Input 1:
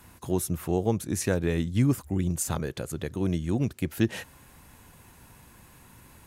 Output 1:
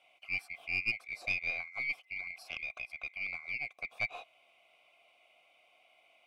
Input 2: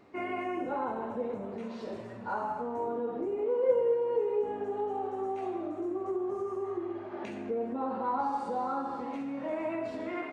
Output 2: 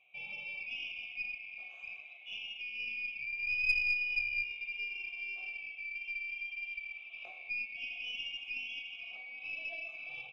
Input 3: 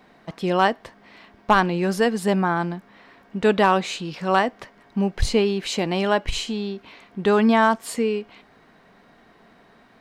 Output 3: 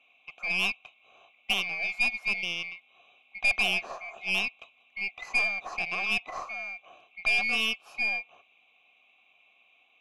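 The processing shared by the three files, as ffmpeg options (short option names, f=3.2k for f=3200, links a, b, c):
-filter_complex "[0:a]afftfilt=real='real(if(lt(b,920),b+92*(1-2*mod(floor(b/92),2)),b),0)':imag='imag(if(lt(b,920),b+92*(1-2*mod(floor(b/92),2)),b),0)':win_size=2048:overlap=0.75,asplit=3[a][b][c];[a]bandpass=f=730:t=q:w=8,volume=0dB[d];[b]bandpass=f=1.09k:t=q:w=8,volume=-6dB[e];[c]bandpass=f=2.44k:t=q:w=8,volume=-9dB[f];[d][e][f]amix=inputs=3:normalize=0,aeval=exprs='0.158*(cos(1*acos(clip(val(0)/0.158,-1,1)))-cos(1*PI/2))+0.00501*(cos(5*acos(clip(val(0)/0.158,-1,1)))-cos(5*PI/2))+0.0141*(cos(6*acos(clip(val(0)/0.158,-1,1)))-cos(6*PI/2))':c=same,volume=2.5dB"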